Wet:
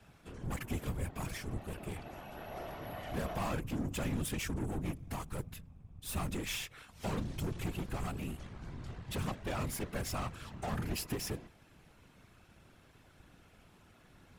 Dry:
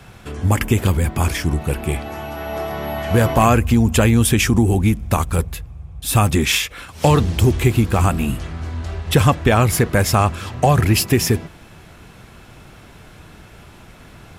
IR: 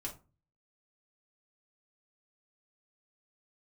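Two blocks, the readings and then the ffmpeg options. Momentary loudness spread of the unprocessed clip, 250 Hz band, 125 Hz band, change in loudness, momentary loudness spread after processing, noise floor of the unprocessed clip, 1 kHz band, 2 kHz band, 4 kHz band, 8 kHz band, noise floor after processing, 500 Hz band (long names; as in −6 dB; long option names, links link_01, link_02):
13 LU, −21.0 dB, −23.0 dB, −22.0 dB, 10 LU, −43 dBFS, −22.0 dB, −21.0 dB, −20.0 dB, −20.5 dB, −62 dBFS, −22.5 dB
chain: -af "aeval=exprs='0.794*(cos(1*acos(clip(val(0)/0.794,-1,1)))-cos(1*PI/2))+0.112*(cos(6*acos(clip(val(0)/0.794,-1,1)))-cos(6*PI/2))+0.0501*(cos(7*acos(clip(val(0)/0.794,-1,1)))-cos(7*PI/2))':channel_layout=same,asoftclip=type=tanh:threshold=-18dB,afftfilt=real='hypot(re,im)*cos(2*PI*random(0))':imag='hypot(re,im)*sin(2*PI*random(1))':win_size=512:overlap=0.75,volume=-7.5dB"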